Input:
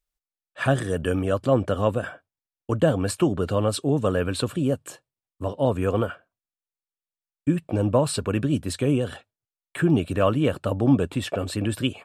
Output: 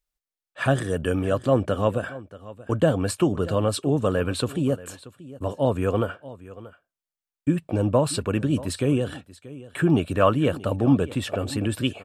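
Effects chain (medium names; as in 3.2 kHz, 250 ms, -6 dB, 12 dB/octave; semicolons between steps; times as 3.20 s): delay 632 ms -18 dB; 9.86–10.33 s: dynamic bell 1.2 kHz, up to +5 dB, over -34 dBFS, Q 0.88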